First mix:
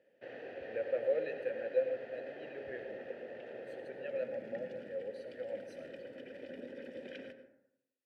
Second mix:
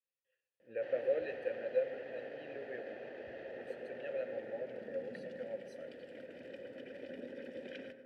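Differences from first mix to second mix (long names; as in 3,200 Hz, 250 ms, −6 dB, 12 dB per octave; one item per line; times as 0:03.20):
speech: send −7.0 dB
background: entry +0.60 s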